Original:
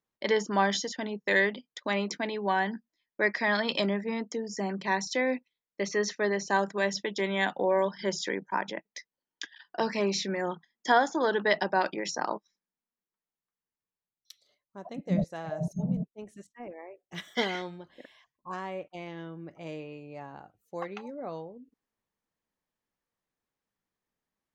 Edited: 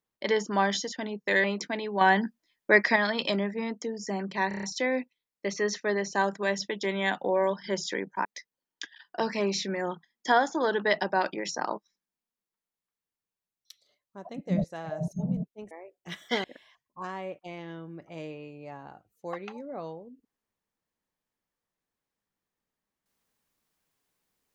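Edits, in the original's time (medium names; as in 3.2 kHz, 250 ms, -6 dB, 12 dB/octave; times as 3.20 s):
1.44–1.94 s: delete
2.51–3.46 s: gain +6.5 dB
4.98 s: stutter 0.03 s, 6 plays
8.60–8.85 s: delete
16.31–16.77 s: delete
17.50–17.93 s: delete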